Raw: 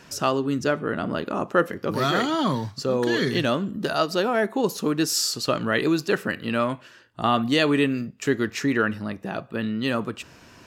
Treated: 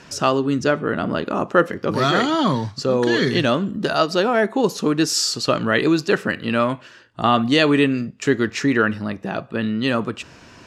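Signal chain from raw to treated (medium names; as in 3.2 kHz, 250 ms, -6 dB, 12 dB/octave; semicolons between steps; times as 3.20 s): low-pass 8.2 kHz 12 dB/octave; trim +4.5 dB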